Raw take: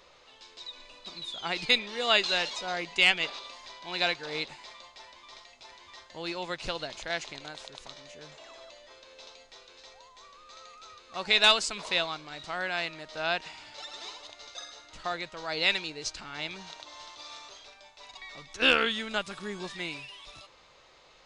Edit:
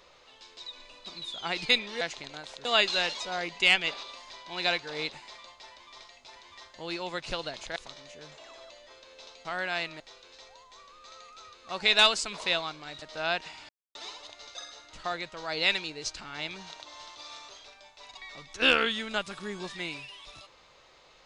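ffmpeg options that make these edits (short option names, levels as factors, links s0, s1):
-filter_complex "[0:a]asplit=9[s0][s1][s2][s3][s4][s5][s6][s7][s8];[s0]atrim=end=2.012[s9];[s1]atrim=start=7.118:end=7.762[s10];[s2]atrim=start=2.008:end=7.122[s11];[s3]atrim=start=7.758:end=9.452[s12];[s4]atrim=start=12.468:end=13.022[s13];[s5]atrim=start=9.448:end=12.472[s14];[s6]atrim=start=13.018:end=13.69,asetpts=PTS-STARTPTS,afade=t=out:st=0.668:d=0.004:c=hsin[s15];[s7]atrim=start=13.69:end=13.95,asetpts=PTS-STARTPTS,volume=0[s16];[s8]atrim=start=13.95,asetpts=PTS-STARTPTS,afade=t=in:d=0.004:c=hsin[s17];[s9][s10]acrossfade=d=0.004:c1=hsin:c2=hsin[s18];[s18][s11]acrossfade=d=0.004:c1=hsin:c2=hsin[s19];[s19][s12]acrossfade=d=0.004:c1=hsin:c2=hsin[s20];[s20][s13]acrossfade=d=0.004:c1=hsin:c2=hsin[s21];[s21][s14]acrossfade=d=0.004:c1=hsin:c2=hsin[s22];[s15][s16][s17]concat=n=3:v=0:a=1[s23];[s22][s23]acrossfade=d=0.004:c1=hsin:c2=hsin"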